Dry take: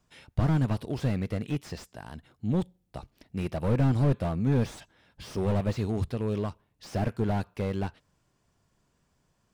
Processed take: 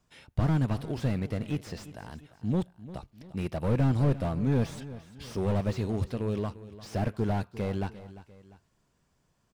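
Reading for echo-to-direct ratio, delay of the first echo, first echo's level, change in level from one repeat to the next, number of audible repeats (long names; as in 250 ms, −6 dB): −15.0 dB, 348 ms, −16.0 dB, −6.5 dB, 2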